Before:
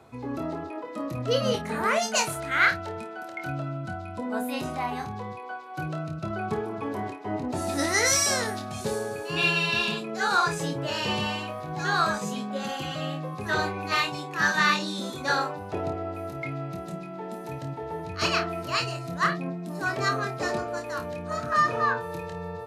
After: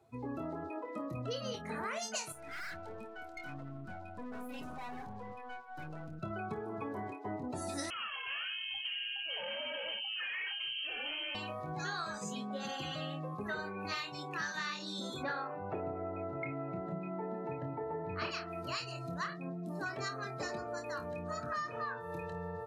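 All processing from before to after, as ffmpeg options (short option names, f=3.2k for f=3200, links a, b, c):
-filter_complex "[0:a]asettb=1/sr,asplit=3[a][b][c];[a]atrim=end=2.324[d];[b]atrim=start=2.32:end=6.23,asetpts=PTS-STARTPTS,afade=t=in:d=0.004:c=qsin,afade=t=out:st=3.906:d=0.004:c=qsin,aecho=1:1:4.1:0.35,atrim=end_sample=172431,aeval=exprs='(tanh(79.4*val(0)+0.8)-tanh(0.8))/79.4':c=same[e];[c]atrim=start=6.226[f];[d][e]acrossfade=d=0.004:c1=hsin:c2=qsin[g];[g][f]acrossfade=d=0.004:c1=qsin:c2=hsin,asettb=1/sr,asplit=3[h][i][j];[h]atrim=end=7.904[k];[i]atrim=start=7.9:end=11.35,asetpts=PTS-STARTPTS,afade=t=in:d=0.004:c=qsin,afade=t=out:st=3.446:d=0.004:c=qsin,asuperstop=centerf=1300:order=20:qfactor=6.5,asoftclip=type=hard:threshold=-29dB,lowpass=f=2.8k:t=q:w=0.5098,lowpass=f=2.8k:t=q:w=0.6013,lowpass=f=2.8k:t=q:w=0.9,lowpass=f=2.8k:t=q:w=2.563,afreqshift=-3300[l];[j]atrim=start=11.346[m];[k][l]acrossfade=d=0.004:c1=hsin:c2=qsin[n];[n][m]acrossfade=d=0.004:c1=qsin:c2=hsin,asettb=1/sr,asplit=3[o][p][q];[o]atrim=end=13.374[r];[p]atrim=start=13.37:end=13.85,asetpts=PTS-STARTPTS,afade=t=in:d=0.004:c=qsin,afade=t=out:st=0.476:d=0.004:c=qsin,equalizer=f=5.1k:t=o:w=2.1:g=-8,aecho=1:1:4.6:0.62,atrim=end_sample=21168[s];[q]atrim=start=13.846[t];[r][s]acrossfade=d=0.004:c1=hsin:c2=qsin[u];[u][t]acrossfade=d=0.004:c1=qsin:c2=hsin,asettb=1/sr,asplit=3[v][w][x];[v]atrim=end=15.234[y];[w]atrim=start=15.23:end=18.31,asetpts=PTS-STARTPTS,afade=t=in:d=0.004:c=qsin,afade=t=out:st=3.076:d=0.004:c=qsin,highpass=110,lowpass=2.2k,acontrast=51,asplit=2[z][aa];[aa]adelay=32,volume=-7dB[ab];[z][ab]amix=inputs=2:normalize=0,atrim=end_sample=135828[ac];[x]atrim=start=18.306[ad];[y][ac]acrossfade=d=0.004:c1=hsin:c2=qsin[ae];[ae][ad]acrossfade=d=0.004:c1=qsin:c2=hsin,afftdn=nr=16:nf=-43,highshelf=f=3.6k:g=8.5,acompressor=threshold=-32dB:ratio=6,volume=-4.5dB"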